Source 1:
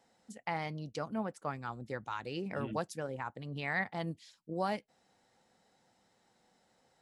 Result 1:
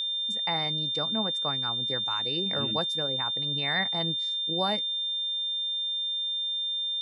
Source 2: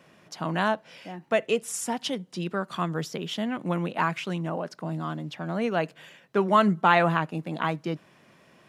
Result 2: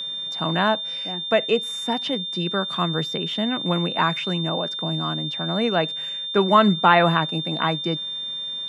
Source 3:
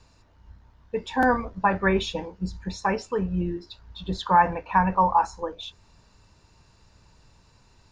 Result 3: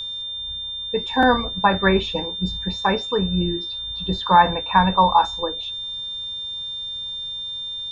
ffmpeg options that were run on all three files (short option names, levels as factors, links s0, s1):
-filter_complex "[0:a]acrossover=split=3300[s0][s1];[s1]acompressor=threshold=0.00398:ratio=4:attack=1:release=60[s2];[s0][s2]amix=inputs=2:normalize=0,aeval=exprs='val(0)+0.0251*sin(2*PI*3600*n/s)':c=same,volume=1.68"